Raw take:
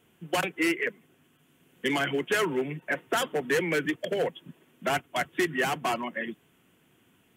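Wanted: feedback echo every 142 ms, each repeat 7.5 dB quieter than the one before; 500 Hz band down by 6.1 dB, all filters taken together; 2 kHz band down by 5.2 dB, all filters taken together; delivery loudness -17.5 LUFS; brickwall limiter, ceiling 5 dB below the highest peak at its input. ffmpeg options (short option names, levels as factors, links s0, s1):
-af "equalizer=f=500:t=o:g=-8,equalizer=f=2000:t=o:g=-6,alimiter=limit=0.075:level=0:latency=1,aecho=1:1:142|284|426|568|710:0.422|0.177|0.0744|0.0312|0.0131,volume=6.68"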